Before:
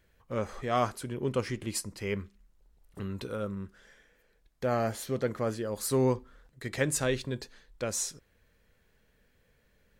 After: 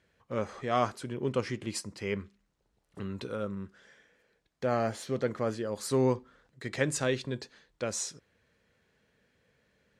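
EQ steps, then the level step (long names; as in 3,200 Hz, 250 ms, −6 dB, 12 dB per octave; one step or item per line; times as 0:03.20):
band-pass filter 100–7,500 Hz
0.0 dB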